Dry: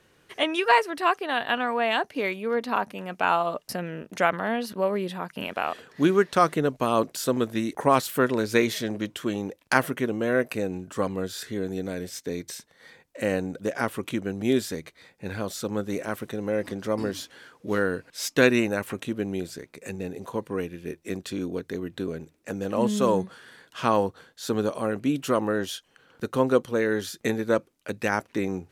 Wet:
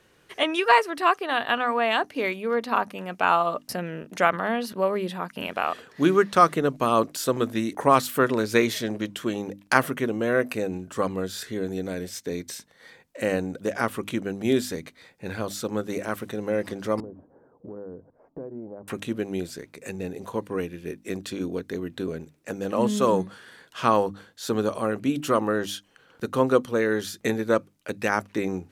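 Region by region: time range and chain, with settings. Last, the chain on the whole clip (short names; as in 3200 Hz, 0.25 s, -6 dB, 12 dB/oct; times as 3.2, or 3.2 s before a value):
17–18.88 inverse Chebyshev low-pass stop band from 3600 Hz, stop band 70 dB + compressor 4:1, threshold -37 dBFS
whole clip: notches 50/100/150/200/250/300 Hz; dynamic EQ 1200 Hz, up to +5 dB, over -43 dBFS, Q 6.8; gain +1 dB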